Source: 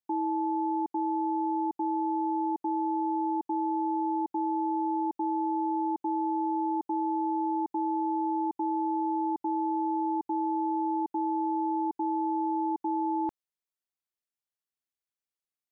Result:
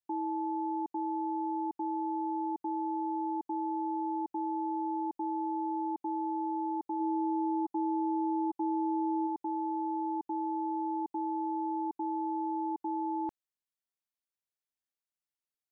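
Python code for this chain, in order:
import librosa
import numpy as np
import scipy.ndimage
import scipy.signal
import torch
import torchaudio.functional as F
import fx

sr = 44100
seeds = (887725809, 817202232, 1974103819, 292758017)

y = fx.comb(x, sr, ms=6.1, depth=0.6, at=(6.99, 9.26), fade=0.02)
y = y * librosa.db_to_amplitude(-4.5)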